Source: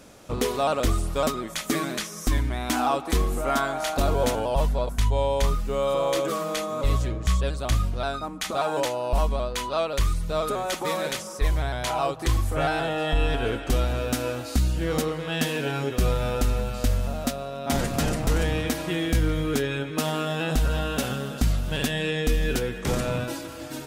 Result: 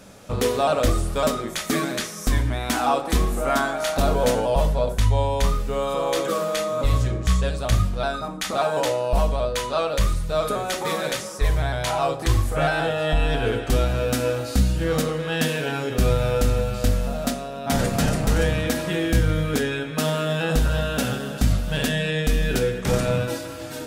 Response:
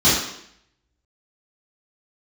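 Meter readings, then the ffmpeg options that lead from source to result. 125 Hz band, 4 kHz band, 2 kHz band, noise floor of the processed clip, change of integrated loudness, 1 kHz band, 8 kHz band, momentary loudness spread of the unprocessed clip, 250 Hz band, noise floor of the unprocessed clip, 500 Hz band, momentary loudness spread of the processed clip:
+4.0 dB, +2.5 dB, +3.5 dB, −33 dBFS, +3.0 dB, +2.0 dB, +2.5 dB, 4 LU, +2.5 dB, −37 dBFS, +3.5 dB, 4 LU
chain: -filter_complex "[0:a]asplit=2[link_01][link_02];[1:a]atrim=start_sample=2205,asetrate=66150,aresample=44100[link_03];[link_02][link_03]afir=irnorm=-1:irlink=0,volume=-25dB[link_04];[link_01][link_04]amix=inputs=2:normalize=0,volume=2dB"

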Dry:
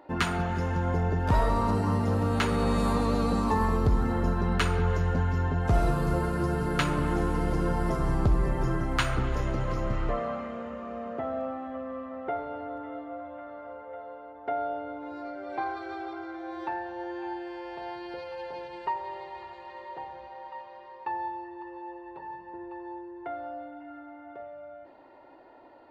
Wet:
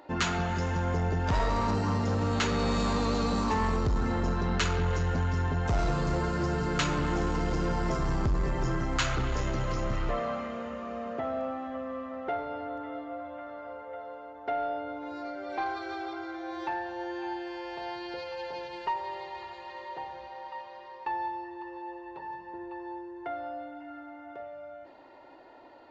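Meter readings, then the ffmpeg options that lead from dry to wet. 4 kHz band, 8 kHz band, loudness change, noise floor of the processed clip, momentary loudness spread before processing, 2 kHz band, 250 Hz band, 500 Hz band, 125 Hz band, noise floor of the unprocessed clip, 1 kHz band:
+2.5 dB, +3.5 dB, −2.0 dB, −47 dBFS, 16 LU, 0.0 dB, −2.0 dB, −1.5 dB, −2.5 dB, −48 dBFS, −1.0 dB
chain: -af "highshelf=frequency=3100:gain=10.5,aresample=16000,asoftclip=type=tanh:threshold=-21.5dB,aresample=44100"

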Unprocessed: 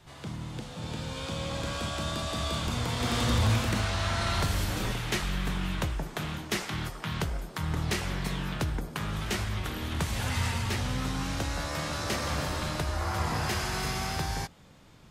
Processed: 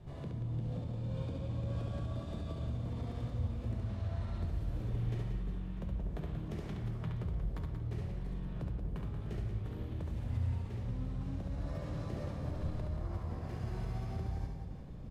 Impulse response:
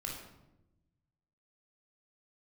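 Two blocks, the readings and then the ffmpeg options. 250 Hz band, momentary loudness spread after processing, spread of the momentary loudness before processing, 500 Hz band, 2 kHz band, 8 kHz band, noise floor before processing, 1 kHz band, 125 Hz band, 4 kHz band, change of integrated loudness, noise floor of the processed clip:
−8.0 dB, 4 LU, 7 LU, −10.0 dB, −23.0 dB, below −25 dB, −48 dBFS, −18.0 dB, −4.5 dB, −25.5 dB, −8.0 dB, −43 dBFS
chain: -filter_complex "[0:a]firequalizer=gain_entry='entry(140,0);entry(1200,-17);entry(6000,-24)':delay=0.05:min_phase=1,acompressor=threshold=-44dB:ratio=6,alimiter=level_in=16.5dB:limit=-24dB:level=0:latency=1:release=61,volume=-16.5dB,aecho=1:1:70|182|361.2|647.9|1107:0.631|0.398|0.251|0.158|0.1,asplit=2[link_01][link_02];[1:a]atrim=start_sample=2205,asetrate=37485,aresample=44100[link_03];[link_02][link_03]afir=irnorm=-1:irlink=0,volume=-6dB[link_04];[link_01][link_04]amix=inputs=2:normalize=0,volume=4dB"

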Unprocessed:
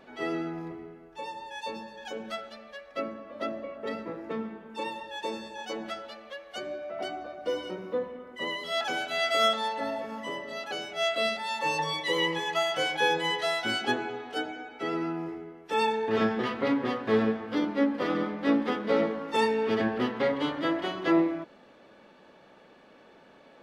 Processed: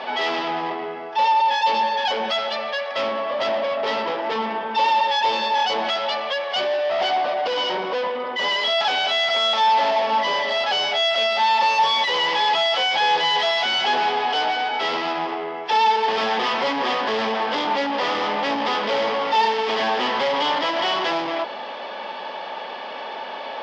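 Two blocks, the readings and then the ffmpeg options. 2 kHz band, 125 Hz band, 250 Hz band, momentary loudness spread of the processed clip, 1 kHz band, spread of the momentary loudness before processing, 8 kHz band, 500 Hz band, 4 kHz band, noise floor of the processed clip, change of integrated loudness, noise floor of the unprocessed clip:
+9.0 dB, can't be measured, −3.0 dB, 9 LU, +14.0 dB, 13 LU, +5.0 dB, +6.5 dB, +12.5 dB, −32 dBFS, +9.0 dB, −55 dBFS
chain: -filter_complex "[0:a]asplit=2[link_01][link_02];[link_02]highpass=frequency=720:poles=1,volume=35dB,asoftclip=type=tanh:threshold=-13dB[link_03];[link_01][link_03]amix=inputs=2:normalize=0,lowpass=frequency=1600:poles=1,volume=-6dB,highpass=300,equalizer=frequency=320:width_type=q:width=4:gain=-10,equalizer=frequency=470:width_type=q:width=4:gain=-4,equalizer=frequency=880:width_type=q:width=4:gain=6,equalizer=frequency=1400:width_type=q:width=4:gain=-6,equalizer=frequency=3200:width_type=q:width=4:gain=8,equalizer=frequency=5000:width_type=q:width=4:gain=9,lowpass=frequency=5600:width=0.5412,lowpass=frequency=5600:width=1.3066"

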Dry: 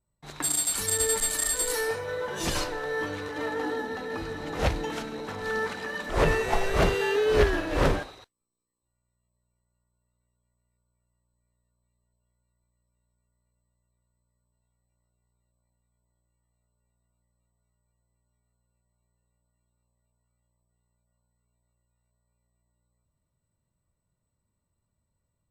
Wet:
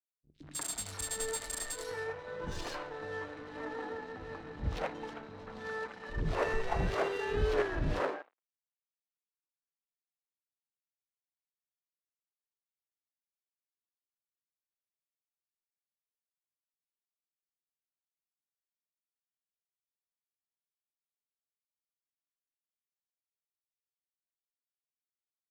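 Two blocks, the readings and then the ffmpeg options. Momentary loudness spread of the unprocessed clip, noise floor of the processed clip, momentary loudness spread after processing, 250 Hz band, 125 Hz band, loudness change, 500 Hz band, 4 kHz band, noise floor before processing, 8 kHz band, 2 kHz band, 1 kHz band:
10 LU, below −85 dBFS, 12 LU, −9.5 dB, −7.0 dB, −9.5 dB, −9.0 dB, −11.0 dB, −80 dBFS, −12.5 dB, −9.5 dB, −7.5 dB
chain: -filter_complex "[0:a]aeval=exprs='sgn(val(0))*max(abs(val(0))-0.00891,0)':channel_layout=same,acrossover=split=310|2800[link_01][link_02][link_03];[link_03]adelay=110[link_04];[link_02]adelay=190[link_05];[link_01][link_05][link_04]amix=inputs=3:normalize=0,adynamicsmooth=sensitivity=5:basefreq=3000,volume=-6dB"

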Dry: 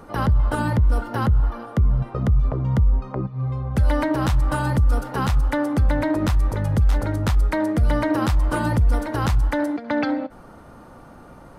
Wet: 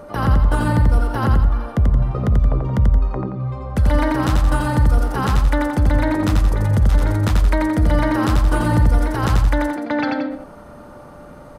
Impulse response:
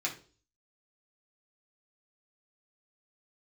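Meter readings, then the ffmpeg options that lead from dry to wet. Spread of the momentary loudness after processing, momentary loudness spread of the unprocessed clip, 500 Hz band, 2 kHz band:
5 LU, 4 LU, +2.5 dB, +3.5 dB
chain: -af "aeval=exprs='val(0)+0.0112*sin(2*PI*590*n/s)':channel_layout=same,aecho=1:1:87.46|174.9:0.708|0.316,volume=1.5dB"

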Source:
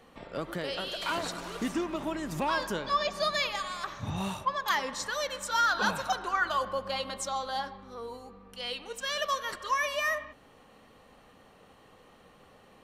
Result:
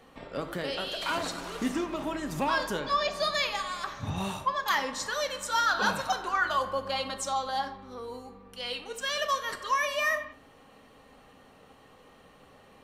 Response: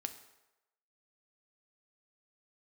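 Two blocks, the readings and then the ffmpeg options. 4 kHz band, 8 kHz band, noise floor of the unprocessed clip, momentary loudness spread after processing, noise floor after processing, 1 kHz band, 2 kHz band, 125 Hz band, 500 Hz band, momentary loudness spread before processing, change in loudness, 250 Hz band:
+1.5 dB, +1.5 dB, −58 dBFS, 10 LU, −56 dBFS, +1.5 dB, +1.5 dB, +0.5 dB, +1.5 dB, 11 LU, +1.5 dB, +1.0 dB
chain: -filter_complex "[1:a]atrim=start_sample=2205,atrim=end_sample=4410[link_01];[0:a][link_01]afir=irnorm=-1:irlink=0,volume=3dB"

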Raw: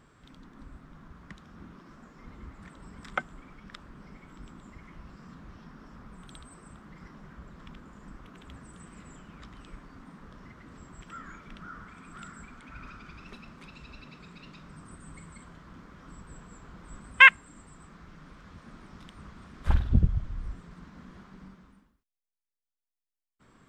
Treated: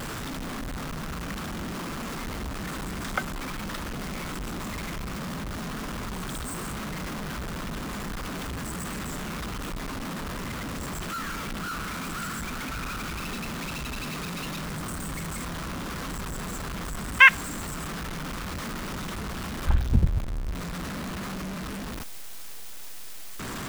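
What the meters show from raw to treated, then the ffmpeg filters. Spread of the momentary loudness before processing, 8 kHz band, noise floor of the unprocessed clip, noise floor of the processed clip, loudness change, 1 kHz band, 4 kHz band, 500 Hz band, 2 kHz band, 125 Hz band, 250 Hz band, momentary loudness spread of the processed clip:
24 LU, +19.5 dB, below −85 dBFS, −35 dBFS, −8.0 dB, +4.5 dB, +5.0 dB, +12.5 dB, +1.0 dB, +4.5 dB, +10.5 dB, 4 LU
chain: -af "aeval=exprs='val(0)+0.5*0.0355*sgn(val(0))':channel_layout=same"

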